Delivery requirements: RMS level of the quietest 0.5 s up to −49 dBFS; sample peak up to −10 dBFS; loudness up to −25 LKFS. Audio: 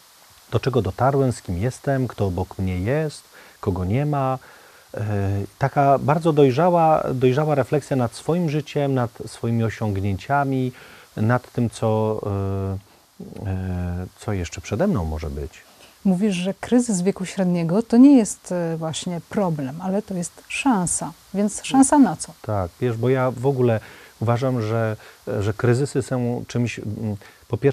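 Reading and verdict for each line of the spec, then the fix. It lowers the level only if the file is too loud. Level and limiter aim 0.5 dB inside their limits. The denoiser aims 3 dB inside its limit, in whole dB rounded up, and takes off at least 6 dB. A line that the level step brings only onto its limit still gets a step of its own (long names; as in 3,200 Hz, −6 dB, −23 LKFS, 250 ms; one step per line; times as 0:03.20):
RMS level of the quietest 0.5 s −50 dBFS: in spec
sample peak −3.0 dBFS: out of spec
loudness −22.0 LKFS: out of spec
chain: level −3.5 dB
brickwall limiter −10.5 dBFS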